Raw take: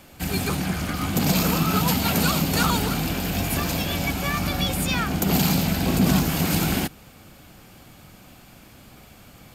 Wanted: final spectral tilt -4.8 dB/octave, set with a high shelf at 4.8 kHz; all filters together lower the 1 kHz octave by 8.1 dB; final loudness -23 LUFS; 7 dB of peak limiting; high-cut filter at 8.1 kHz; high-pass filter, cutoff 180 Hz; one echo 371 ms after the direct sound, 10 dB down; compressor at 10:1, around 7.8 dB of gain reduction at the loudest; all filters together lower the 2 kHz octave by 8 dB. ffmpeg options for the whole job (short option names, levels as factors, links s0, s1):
-af "highpass=180,lowpass=8100,equalizer=f=1000:t=o:g=-9,equalizer=f=2000:t=o:g=-7,highshelf=f=4800:g=-5,acompressor=threshold=0.0501:ratio=10,alimiter=limit=0.0631:level=0:latency=1,aecho=1:1:371:0.316,volume=3.16"